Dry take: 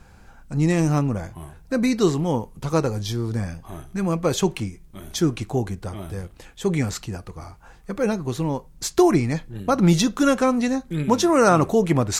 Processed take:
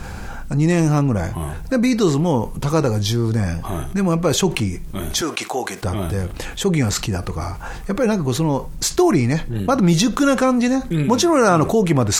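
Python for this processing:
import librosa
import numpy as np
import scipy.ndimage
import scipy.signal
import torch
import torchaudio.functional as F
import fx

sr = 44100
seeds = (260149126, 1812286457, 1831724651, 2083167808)

y = fx.highpass(x, sr, hz=650.0, slope=12, at=(5.21, 5.83))
y = fx.env_flatten(y, sr, amount_pct=50)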